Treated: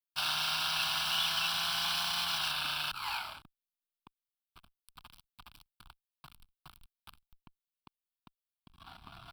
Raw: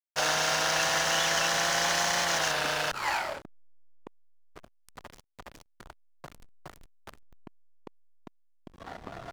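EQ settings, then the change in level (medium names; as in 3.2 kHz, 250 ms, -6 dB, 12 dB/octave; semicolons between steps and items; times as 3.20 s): amplifier tone stack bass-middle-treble 5-5-5; static phaser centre 1.9 kHz, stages 6; +8.0 dB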